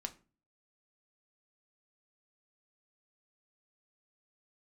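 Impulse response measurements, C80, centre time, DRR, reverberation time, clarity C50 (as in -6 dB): 23.5 dB, 6 ms, 5.0 dB, 0.35 s, 17.5 dB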